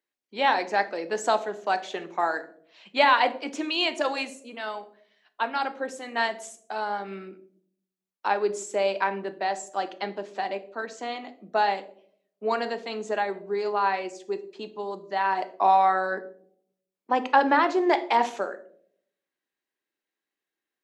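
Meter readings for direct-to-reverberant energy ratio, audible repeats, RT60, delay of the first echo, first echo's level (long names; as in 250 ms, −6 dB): 10.0 dB, no echo audible, 0.65 s, no echo audible, no echo audible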